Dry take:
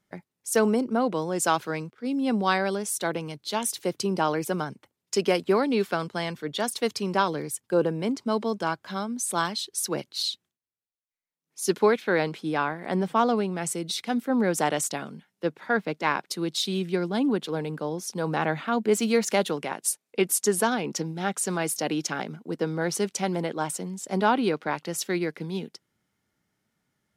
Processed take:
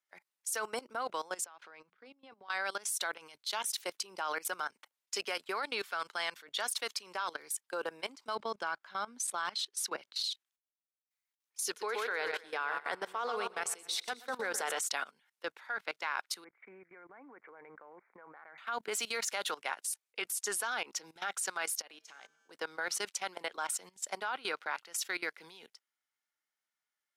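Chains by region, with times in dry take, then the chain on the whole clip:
0:01.44–0:02.50: mains-hum notches 60/120/180/240 Hz + downward compressor, threshold −34 dBFS + head-to-tape spacing loss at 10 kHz 23 dB
0:08.35–0:10.24: low-pass filter 3,800 Hz 6 dB per octave + low-shelf EQ 290 Hz +9 dB
0:11.64–0:14.79: parametric band 450 Hz +10.5 dB 0.21 octaves + repeating echo 124 ms, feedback 54%, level −11.5 dB
0:16.44–0:18.58: one scale factor per block 7 bits + Chebyshev low-pass filter 2,300 Hz, order 8 + downward compressor 20 to 1, threshold −29 dBFS
0:21.82–0:22.51: downward compressor 16 to 1, threshold −28 dBFS + tuned comb filter 91 Hz, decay 1.7 s, harmonics odd, mix 70%
whole clip: high-pass filter 1,000 Hz 12 dB per octave; dynamic equaliser 1,400 Hz, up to +5 dB, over −46 dBFS, Q 4; output level in coarse steps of 19 dB; level +3 dB

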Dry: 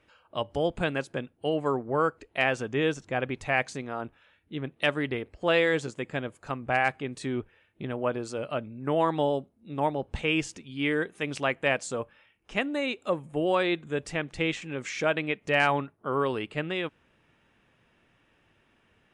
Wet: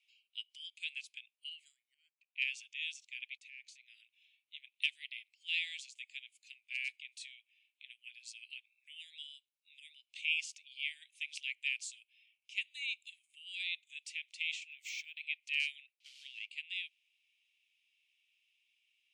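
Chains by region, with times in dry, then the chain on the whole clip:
0:01.94–0:02.42: resonant band-pass 2,400 Hz, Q 2.8 + expander for the loud parts, over −48 dBFS
0:03.37–0:03.88: downward expander −48 dBFS + high-shelf EQ 2,200 Hz −10 dB + downward compressor, threshold −32 dBFS
0:14.70–0:15.21: downward compressor 4 to 1, threshold −31 dBFS + linearly interpolated sample-rate reduction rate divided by 2×
0:16.00–0:16.49: variable-slope delta modulation 64 kbit/s + low-pass filter 3,700 Hz + multiband upward and downward compressor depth 100%
whole clip: Butterworth high-pass 2,300 Hz 72 dB per octave; high-shelf EQ 8,300 Hz −8 dB; level −2.5 dB

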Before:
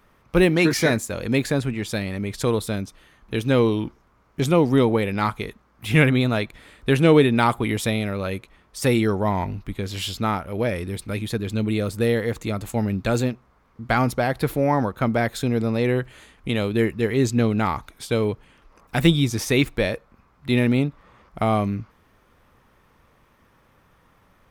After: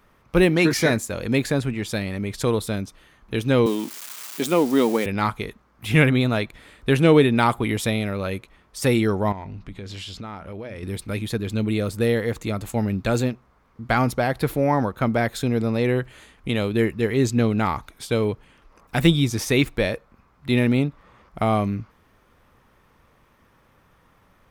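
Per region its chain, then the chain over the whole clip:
0:03.66–0:05.06: spike at every zero crossing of −22.5 dBFS + Chebyshev high-pass filter 220 Hz, order 3 + parametric band 13,000 Hz −3.5 dB 0.32 octaves
0:09.32–0:10.83: low-pass filter 7,100 Hz + mains-hum notches 60/120/180/240 Hz + downward compressor 5 to 1, threshold −32 dBFS
whole clip: no processing

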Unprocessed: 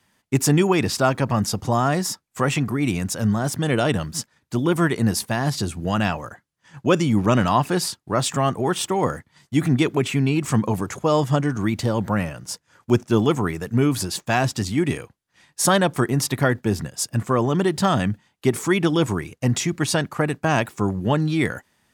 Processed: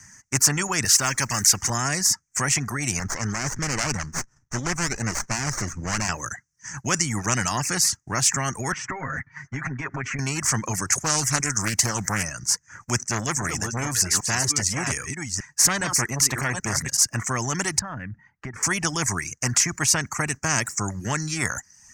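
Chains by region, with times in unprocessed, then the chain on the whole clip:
0:00.85–0:01.70: mu-law and A-law mismatch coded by mu + tilt shelving filter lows −6.5 dB, about 1,100 Hz
0:02.99–0:06.09: low-pass filter 6,900 Hz + windowed peak hold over 17 samples
0:08.72–0:10.19: downward compressor 12 to 1, threshold −28 dBFS + low-pass with resonance 1,700 Hz, resonance Q 2.2 + comb filter 7.4 ms, depth 98%
0:10.92–0:12.23: high-shelf EQ 5,000 Hz +11.5 dB + highs frequency-modulated by the lows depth 0.38 ms
0:13.01–0:16.97: delay that plays each chunk backwards 399 ms, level −9.5 dB + saturating transformer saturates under 760 Hz
0:17.79–0:18.63: high-frequency loss of the air 490 metres + downward compressor 3 to 1, threshold −35 dBFS
whole clip: reverb reduction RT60 0.5 s; drawn EQ curve 130 Hz 0 dB, 490 Hz −19 dB, 1,900 Hz 0 dB, 3,600 Hz −25 dB, 6,100 Hz +14 dB, 11,000 Hz −12 dB; every bin compressed towards the loudest bin 2 to 1

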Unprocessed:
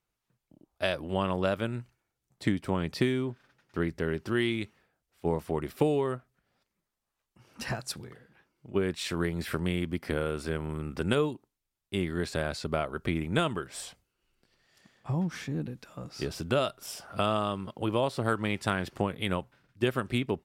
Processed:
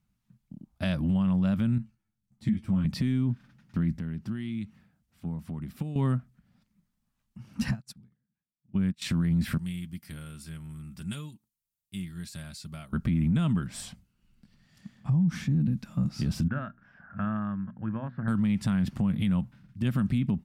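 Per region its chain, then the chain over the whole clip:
0:01.78–0:02.85: tuned comb filter 110 Hz, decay 0.16 s, mix 80% + string-ensemble chorus
0:03.97–0:05.96: high-pass filter 51 Hz + downward compressor 2 to 1, threshold −52 dBFS
0:07.71–0:09.02: dynamic equaliser 330 Hz, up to −4 dB, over −36 dBFS, Q 1.3 + expander for the loud parts 2.5 to 1, over −50 dBFS
0:09.58–0:12.93: first-order pre-emphasis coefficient 0.9 + notch comb filter 250 Hz
0:16.48–0:18.28: transistor ladder low-pass 1,700 Hz, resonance 85% + mains-hum notches 60/120/180/240/300 Hz
whole clip: low shelf with overshoot 290 Hz +11.5 dB, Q 3; brickwall limiter −19 dBFS

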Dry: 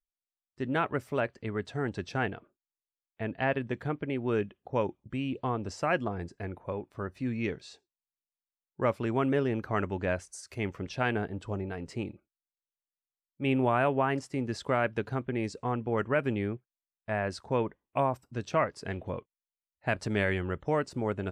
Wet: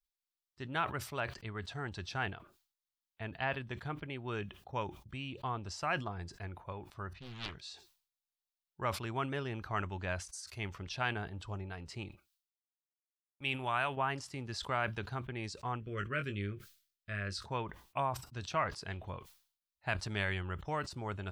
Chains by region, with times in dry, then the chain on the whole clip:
0:07.13–0:07.55: low-pass that shuts in the quiet parts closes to 1,900 Hz, open at −28.5 dBFS + parametric band 500 Hz −10 dB 2.7 octaves + highs frequency-modulated by the lows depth 0.99 ms
0:12.09–0:13.97: noise gate −47 dBFS, range −29 dB + tilt shelving filter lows −5 dB, about 1,300 Hz
0:15.80–0:17.46: Butterworth band-reject 840 Hz, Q 1.1 + double-tracking delay 20 ms −8 dB
whole clip: octave-band graphic EQ 125/250/500/2,000/4,000/8,000 Hz −4/−11/−11/−5/+4/−3 dB; level that may fall only so fast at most 120 dB per second

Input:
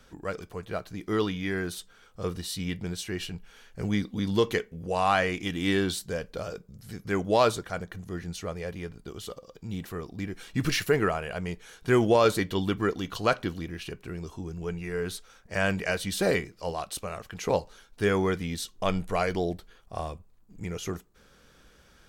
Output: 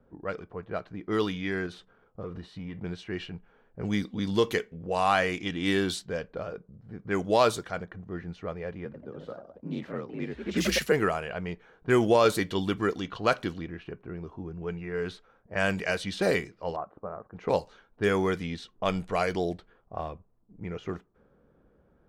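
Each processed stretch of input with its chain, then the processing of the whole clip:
0:01.66–0:02.80: leveller curve on the samples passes 1 + downward compressor 12 to 1, threshold −32 dBFS
0:08.85–0:10.92: frequency shifter +48 Hz + delay with pitch and tempo change per echo 89 ms, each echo +2 semitones, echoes 2, each echo −6 dB
0:16.76–0:17.34: low-pass filter 1,300 Hz 24 dB per octave + low-shelf EQ 87 Hz −11 dB
whole clip: low-pass that shuts in the quiet parts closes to 600 Hz, open at −23 dBFS; low-shelf EQ 65 Hz −11 dB

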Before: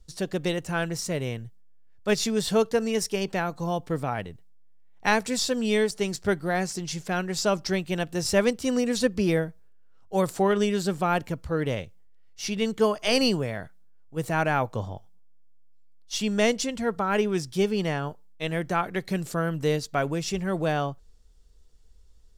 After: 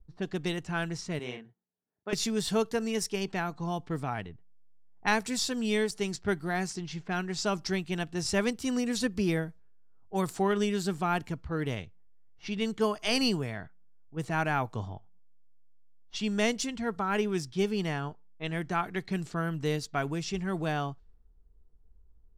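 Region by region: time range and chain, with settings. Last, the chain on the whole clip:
0:01.19–0:02.13: high-pass filter 280 Hz + downward compressor 10 to 1, threshold −25 dBFS + double-tracking delay 40 ms −4 dB
whole clip: low-pass that shuts in the quiet parts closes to 710 Hz, open at −23 dBFS; parametric band 540 Hz −11 dB 0.3 octaves; level −3.5 dB

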